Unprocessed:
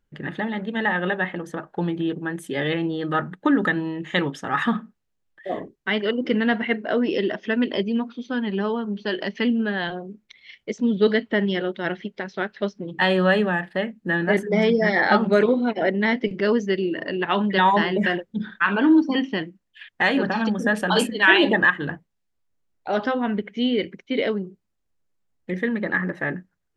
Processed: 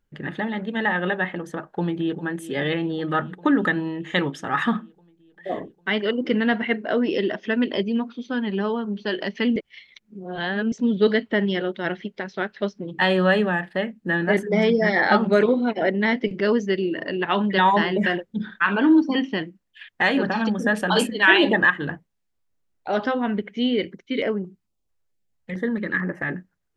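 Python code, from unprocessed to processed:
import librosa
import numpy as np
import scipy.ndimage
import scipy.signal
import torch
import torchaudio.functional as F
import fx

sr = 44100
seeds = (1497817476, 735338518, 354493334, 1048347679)

y = fx.echo_throw(x, sr, start_s=1.71, length_s=0.51, ms=400, feedback_pct=75, wet_db=-14.5)
y = fx.filter_held_notch(y, sr, hz=4.5, low_hz=220.0, high_hz=3800.0, at=(23.91, 26.28), fade=0.02)
y = fx.edit(y, sr, fx.reverse_span(start_s=9.56, length_s=1.16), tone=tone)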